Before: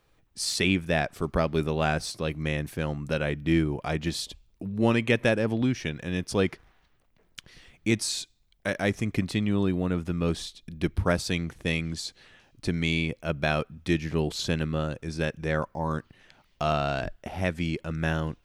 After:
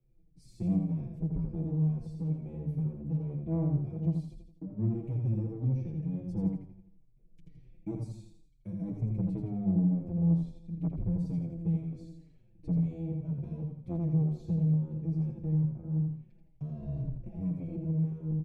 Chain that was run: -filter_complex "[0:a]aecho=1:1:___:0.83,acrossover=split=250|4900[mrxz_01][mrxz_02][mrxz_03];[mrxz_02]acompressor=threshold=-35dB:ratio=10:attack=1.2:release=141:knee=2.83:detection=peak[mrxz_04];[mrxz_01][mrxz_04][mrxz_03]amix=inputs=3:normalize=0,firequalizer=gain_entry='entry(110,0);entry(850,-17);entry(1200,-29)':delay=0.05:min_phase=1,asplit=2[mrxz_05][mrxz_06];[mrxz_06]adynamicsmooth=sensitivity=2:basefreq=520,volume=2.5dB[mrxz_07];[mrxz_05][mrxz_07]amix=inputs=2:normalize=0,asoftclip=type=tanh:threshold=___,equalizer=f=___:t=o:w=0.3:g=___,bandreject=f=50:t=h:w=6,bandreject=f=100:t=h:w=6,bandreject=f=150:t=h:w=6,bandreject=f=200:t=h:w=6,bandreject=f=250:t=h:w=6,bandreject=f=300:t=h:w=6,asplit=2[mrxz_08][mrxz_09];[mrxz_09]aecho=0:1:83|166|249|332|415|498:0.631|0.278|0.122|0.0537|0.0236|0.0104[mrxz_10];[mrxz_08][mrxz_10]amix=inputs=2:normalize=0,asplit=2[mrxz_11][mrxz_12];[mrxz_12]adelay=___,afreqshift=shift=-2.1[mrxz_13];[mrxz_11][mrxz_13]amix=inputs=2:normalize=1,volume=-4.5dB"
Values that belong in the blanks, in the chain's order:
6.2, -17dB, 2300, 12.5, 4.9